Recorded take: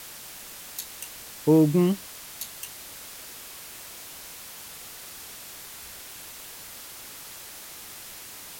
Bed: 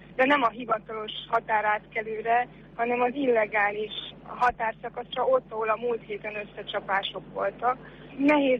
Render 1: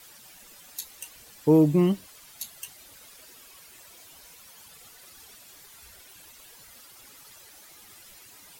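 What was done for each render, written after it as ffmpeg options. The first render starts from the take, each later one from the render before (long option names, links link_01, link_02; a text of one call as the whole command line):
ffmpeg -i in.wav -af "afftdn=noise_reduction=12:noise_floor=-43" out.wav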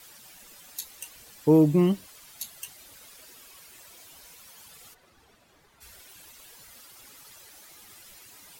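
ffmpeg -i in.wav -filter_complex "[0:a]asplit=3[link_01][link_02][link_03];[link_01]afade=type=out:start_time=4.93:duration=0.02[link_04];[link_02]lowpass=frequency=1000:poles=1,afade=type=in:start_time=4.93:duration=0.02,afade=type=out:start_time=5.8:duration=0.02[link_05];[link_03]afade=type=in:start_time=5.8:duration=0.02[link_06];[link_04][link_05][link_06]amix=inputs=3:normalize=0" out.wav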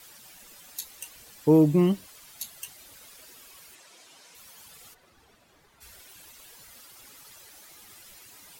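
ffmpeg -i in.wav -filter_complex "[0:a]asettb=1/sr,asplit=3[link_01][link_02][link_03];[link_01]atrim=end=3.754[link_04];[link_02]atrim=start=3.75:end=4.35,asetpts=PTS-STARTPTS,afade=type=in:duration=0.004:curve=qsin,afade=type=out:start_time=0.596:duration=0.004:curve=qsin,highpass=190,lowpass=7800[link_05];[link_03]atrim=start=4.346[link_06];[link_04][link_05]acrossfade=duration=0.004:curve1=hsin:curve2=qsin[link_07];[link_07][link_06]acrossfade=duration=0.004:curve1=qsin:curve2=hsin" out.wav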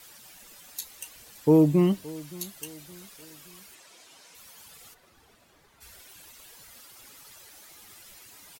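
ffmpeg -i in.wav -af "aecho=1:1:570|1140|1710:0.0891|0.0392|0.0173" out.wav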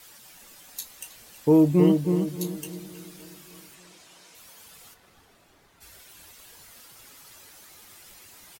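ffmpeg -i in.wav -filter_complex "[0:a]asplit=2[link_01][link_02];[link_02]adelay=22,volume=-11dB[link_03];[link_01][link_03]amix=inputs=2:normalize=0,asplit=2[link_04][link_05];[link_05]adelay=319,lowpass=frequency=1300:poles=1,volume=-4.5dB,asplit=2[link_06][link_07];[link_07]adelay=319,lowpass=frequency=1300:poles=1,volume=0.36,asplit=2[link_08][link_09];[link_09]adelay=319,lowpass=frequency=1300:poles=1,volume=0.36,asplit=2[link_10][link_11];[link_11]adelay=319,lowpass=frequency=1300:poles=1,volume=0.36,asplit=2[link_12][link_13];[link_13]adelay=319,lowpass=frequency=1300:poles=1,volume=0.36[link_14];[link_06][link_08][link_10][link_12][link_14]amix=inputs=5:normalize=0[link_15];[link_04][link_15]amix=inputs=2:normalize=0" out.wav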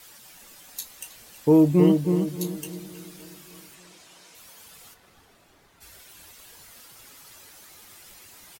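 ffmpeg -i in.wav -af "volume=1dB" out.wav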